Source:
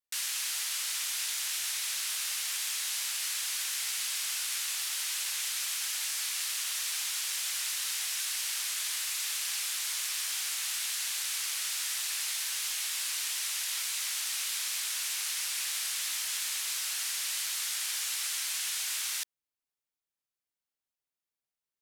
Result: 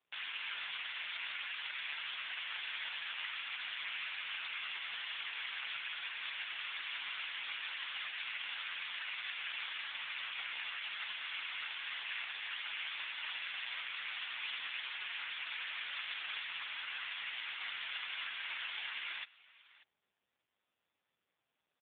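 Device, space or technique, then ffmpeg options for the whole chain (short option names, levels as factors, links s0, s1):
satellite phone: -filter_complex "[0:a]asettb=1/sr,asplit=3[s0][s1][s2];[s0]atrim=end=1.794[s3];[s1]atrim=start=1.79:end=2.61,asetpts=PTS-STARTPTS,afade=t=in:d=0.004:c=qsin,afade=t=out:st=0.816:d=0.004:c=qsin,lowpass=f=6700:w=0.5412,lowpass=f=6700:w=1.3066[s4];[s2]atrim=start=2.606[s5];[s3][s4]acrossfade=d=0.004:c1=hsin:c2=qsin[s6];[s6][s5]acrossfade=d=0.004:c1=qsin:c2=hsin,highpass=330,lowpass=3200,aecho=1:1:594:0.0794,volume=1.88" -ar 8000 -c:a libopencore_amrnb -b:a 4750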